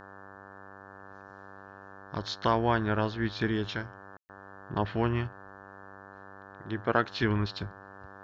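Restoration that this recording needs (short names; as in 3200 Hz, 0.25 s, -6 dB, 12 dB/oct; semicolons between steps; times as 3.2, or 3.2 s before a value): de-hum 97.7 Hz, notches 18; room tone fill 4.17–4.29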